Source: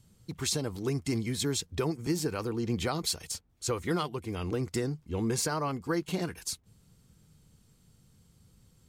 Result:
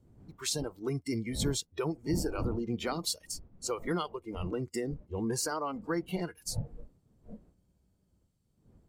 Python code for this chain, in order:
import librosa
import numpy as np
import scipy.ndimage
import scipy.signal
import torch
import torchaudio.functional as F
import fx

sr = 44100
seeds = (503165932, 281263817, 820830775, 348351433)

y = fx.dmg_wind(x, sr, seeds[0], corner_hz=190.0, level_db=-39.0)
y = fx.noise_reduce_blind(y, sr, reduce_db=16)
y = fx.spec_freeze(y, sr, seeds[1], at_s=7.57, hold_s=0.63)
y = y * librosa.db_to_amplitude(-2.0)